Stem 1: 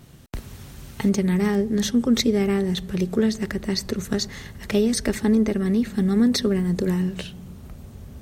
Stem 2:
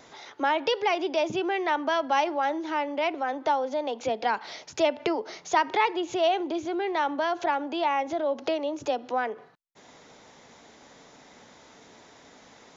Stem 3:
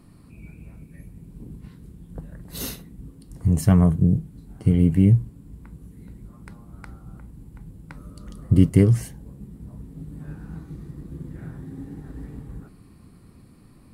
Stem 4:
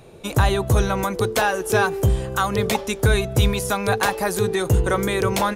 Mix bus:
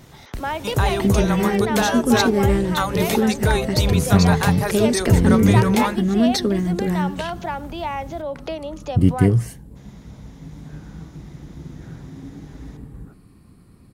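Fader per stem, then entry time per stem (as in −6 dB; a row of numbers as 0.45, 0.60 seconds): +1.0, −1.5, 0.0, −2.0 decibels; 0.00, 0.00, 0.45, 0.40 seconds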